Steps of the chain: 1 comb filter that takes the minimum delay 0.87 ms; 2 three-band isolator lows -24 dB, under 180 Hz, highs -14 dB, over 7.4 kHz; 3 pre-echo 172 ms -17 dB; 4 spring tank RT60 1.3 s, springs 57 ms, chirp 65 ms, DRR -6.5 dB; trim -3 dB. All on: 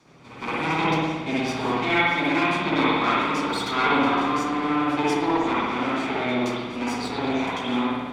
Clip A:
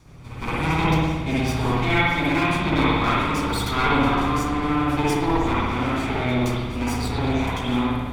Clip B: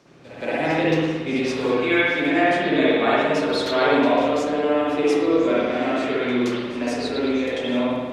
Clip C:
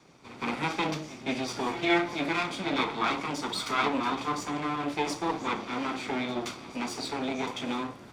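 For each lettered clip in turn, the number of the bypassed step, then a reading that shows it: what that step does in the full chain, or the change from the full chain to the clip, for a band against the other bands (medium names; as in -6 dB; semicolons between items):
2, 125 Hz band +10.5 dB; 1, 500 Hz band +8.0 dB; 4, crest factor change +3.0 dB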